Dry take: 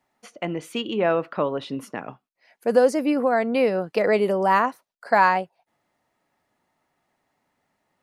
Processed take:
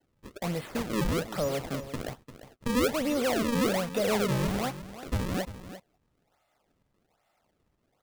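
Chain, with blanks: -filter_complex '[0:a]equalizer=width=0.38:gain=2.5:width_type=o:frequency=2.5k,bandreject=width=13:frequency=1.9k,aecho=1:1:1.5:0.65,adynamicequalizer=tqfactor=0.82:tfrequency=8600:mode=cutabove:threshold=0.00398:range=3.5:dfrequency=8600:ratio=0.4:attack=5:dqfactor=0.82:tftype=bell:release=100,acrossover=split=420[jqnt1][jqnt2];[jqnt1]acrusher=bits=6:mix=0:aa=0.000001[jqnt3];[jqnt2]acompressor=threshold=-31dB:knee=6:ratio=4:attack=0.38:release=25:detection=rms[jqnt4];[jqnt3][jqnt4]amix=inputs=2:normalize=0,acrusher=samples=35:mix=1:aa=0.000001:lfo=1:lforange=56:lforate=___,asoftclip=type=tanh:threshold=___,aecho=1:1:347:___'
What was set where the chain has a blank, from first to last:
1.2, -20.5dB, 0.224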